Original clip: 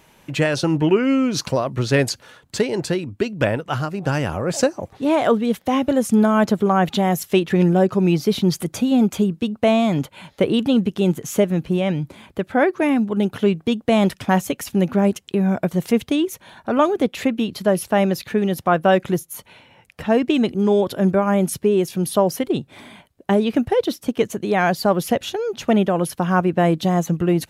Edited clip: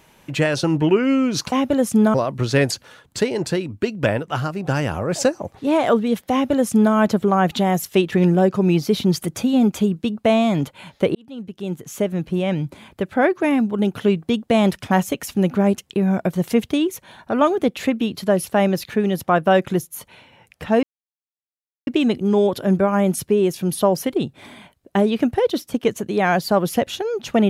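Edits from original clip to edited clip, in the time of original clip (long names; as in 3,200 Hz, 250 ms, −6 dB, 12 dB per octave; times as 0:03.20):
0:05.70–0:06.32: duplicate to 0:01.52
0:10.53–0:11.98: fade in
0:20.21: splice in silence 1.04 s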